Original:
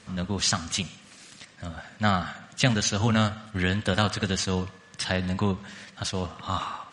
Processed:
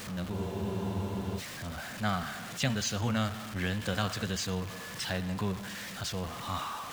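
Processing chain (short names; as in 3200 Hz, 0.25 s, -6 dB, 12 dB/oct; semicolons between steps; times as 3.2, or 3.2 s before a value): zero-crossing step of -28 dBFS; spectral freeze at 0.34, 1.03 s; gain -9 dB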